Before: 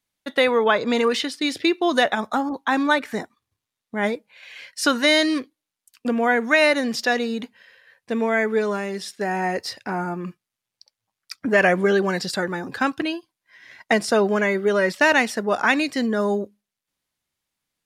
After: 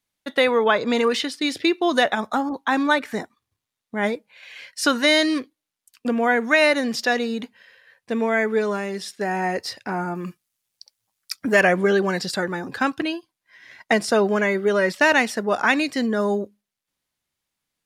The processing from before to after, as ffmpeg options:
ffmpeg -i in.wav -filter_complex "[0:a]asettb=1/sr,asplit=3[link_01][link_02][link_03];[link_01]atrim=end=10.154[link_04];[link_02]atrim=start=10.15:end=11.61,asetpts=PTS-STARTPTS,afade=type=in:duration=0.004:curve=qsin,afade=type=out:start_time=1.456:duration=0.004:curve=qsin,highshelf=frequency=4900:gain=11.5[link_05];[link_03]atrim=start=11.606[link_06];[link_04][link_05]acrossfade=duration=0.004:curve1=hsin:curve2=qsin[link_07];[link_07][link_06]acrossfade=duration=0.004:curve1=qsin:curve2=hsin" out.wav

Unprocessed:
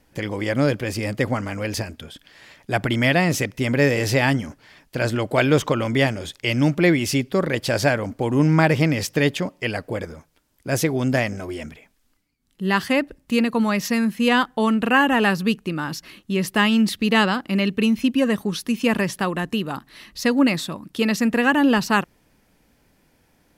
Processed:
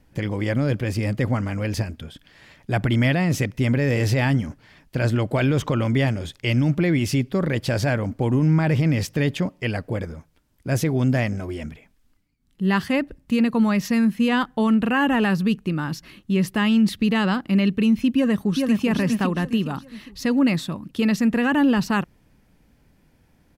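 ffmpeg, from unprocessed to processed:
ffmpeg -i in.wav -filter_complex "[0:a]asplit=2[link_01][link_02];[link_02]afade=type=in:start_time=18.15:duration=0.01,afade=type=out:start_time=18.85:duration=0.01,aecho=0:1:410|820|1230|1640|2050:0.630957|0.252383|0.100953|0.0403813|0.0161525[link_03];[link_01][link_03]amix=inputs=2:normalize=0,bass=frequency=250:gain=8,treble=frequency=4000:gain=-3,alimiter=limit=-9dB:level=0:latency=1:release=17,volume=-2.5dB" out.wav

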